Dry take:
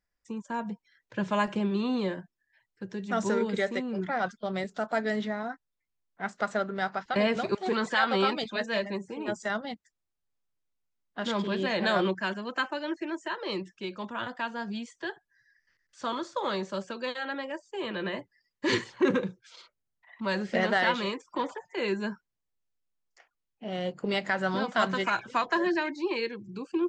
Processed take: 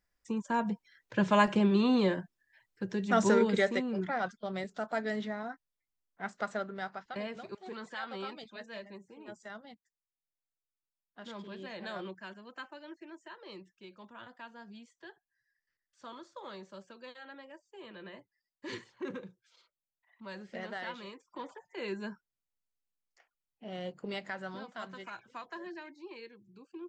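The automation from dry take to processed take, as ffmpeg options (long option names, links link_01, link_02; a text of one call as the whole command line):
ffmpeg -i in.wav -af "volume=10dB,afade=type=out:start_time=3.32:duration=0.98:silence=0.421697,afade=type=out:start_time=6.35:duration=0.97:silence=0.316228,afade=type=in:start_time=21.13:duration=0.86:silence=0.421697,afade=type=out:start_time=23.85:duration=0.89:silence=0.334965" out.wav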